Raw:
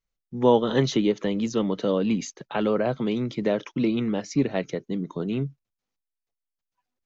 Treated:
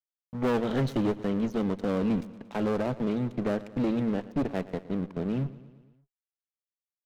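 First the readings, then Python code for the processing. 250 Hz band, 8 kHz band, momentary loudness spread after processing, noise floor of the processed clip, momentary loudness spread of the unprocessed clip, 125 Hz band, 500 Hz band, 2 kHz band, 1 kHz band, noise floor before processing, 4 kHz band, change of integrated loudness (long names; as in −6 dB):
−3.0 dB, can't be measured, 6 LU, below −85 dBFS, 10 LU, −2.0 dB, −6.0 dB, −4.5 dB, −5.5 dB, below −85 dBFS, −10.5 dB, −4.5 dB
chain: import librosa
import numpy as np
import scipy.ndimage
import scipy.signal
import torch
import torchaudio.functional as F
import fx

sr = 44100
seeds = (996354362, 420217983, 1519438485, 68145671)

y = fx.lowpass(x, sr, hz=2400.0, slope=6)
y = fx.peak_eq(y, sr, hz=150.0, db=4.5, octaves=2.1)
y = np.sign(y) * np.maximum(np.abs(y) - 10.0 ** (-36.5 / 20.0), 0.0)
y = fx.tube_stage(y, sr, drive_db=22.0, bias=0.6)
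y = fx.echo_feedback(y, sr, ms=115, feedback_pct=59, wet_db=-17.5)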